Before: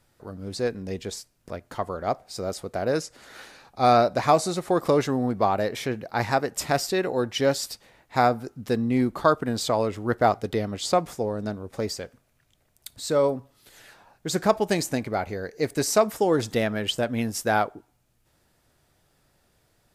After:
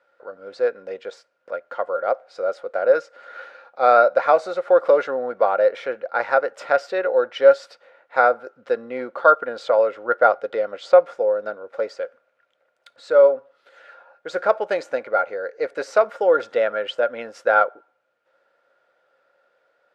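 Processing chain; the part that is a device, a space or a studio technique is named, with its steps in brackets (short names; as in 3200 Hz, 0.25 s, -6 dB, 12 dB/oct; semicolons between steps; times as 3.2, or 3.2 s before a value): tin-can telephone (BPF 620–2500 Hz; small resonant body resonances 530/1400 Hz, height 17 dB, ringing for 45 ms); gain +1 dB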